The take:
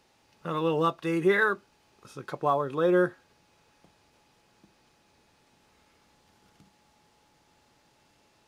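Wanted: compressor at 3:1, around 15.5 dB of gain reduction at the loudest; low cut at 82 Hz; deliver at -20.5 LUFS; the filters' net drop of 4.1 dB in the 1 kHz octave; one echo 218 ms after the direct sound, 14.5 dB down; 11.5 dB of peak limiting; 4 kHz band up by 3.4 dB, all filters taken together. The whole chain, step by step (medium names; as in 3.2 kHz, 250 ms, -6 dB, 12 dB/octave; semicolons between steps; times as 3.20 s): high-pass 82 Hz; peaking EQ 1 kHz -5.5 dB; peaking EQ 4 kHz +4.5 dB; compression 3:1, threshold -41 dBFS; peak limiter -38 dBFS; delay 218 ms -14.5 dB; trim +28 dB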